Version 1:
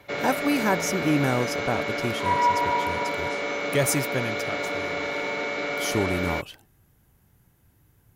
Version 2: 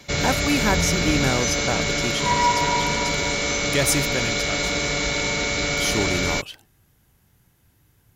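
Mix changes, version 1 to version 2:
background: remove band-pass 350–2900 Hz; master: add peaking EQ 4.5 kHz +6.5 dB 2.4 oct

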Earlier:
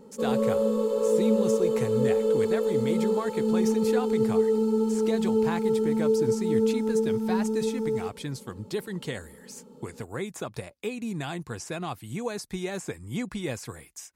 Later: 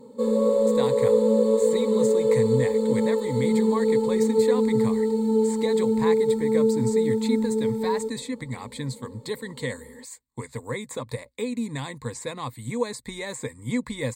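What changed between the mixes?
speech: entry +0.55 s; master: add rippled EQ curve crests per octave 1, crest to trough 14 dB

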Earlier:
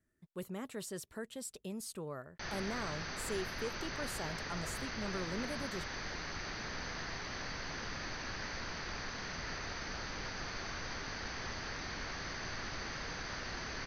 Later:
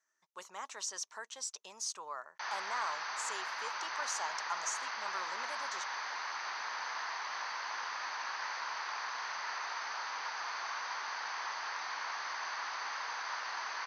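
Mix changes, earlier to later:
speech: add resonant low-pass 6.1 kHz, resonance Q 7.1; master: add resonant high-pass 960 Hz, resonance Q 3.4

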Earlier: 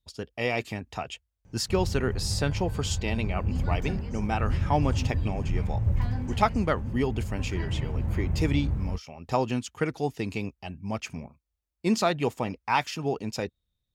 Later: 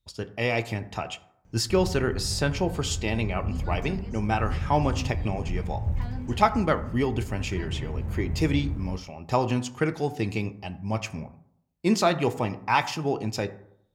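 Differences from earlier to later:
speech: send on; background: send -10.0 dB

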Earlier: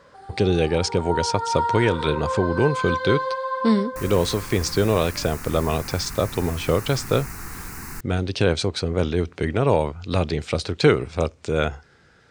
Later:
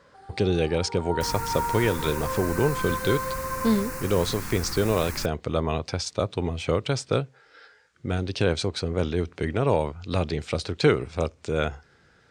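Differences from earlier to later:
speech -3.5 dB; first sound -5.5 dB; second sound: entry -2.75 s

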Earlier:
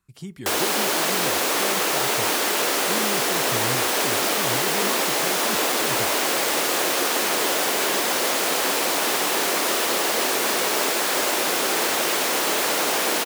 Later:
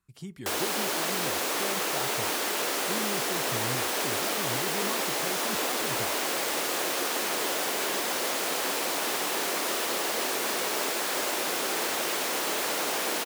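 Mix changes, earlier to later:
speech -4.5 dB; background -7.0 dB

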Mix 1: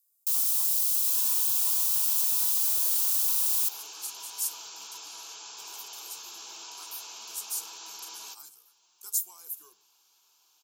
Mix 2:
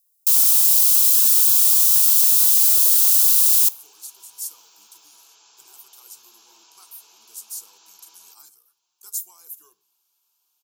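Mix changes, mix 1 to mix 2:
first sound +11.0 dB; second sound -10.0 dB

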